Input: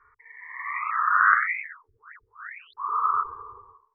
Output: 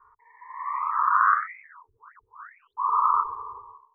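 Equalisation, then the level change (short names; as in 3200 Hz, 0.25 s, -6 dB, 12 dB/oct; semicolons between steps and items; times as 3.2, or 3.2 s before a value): synth low-pass 960 Hz, resonance Q 4.9; -3.0 dB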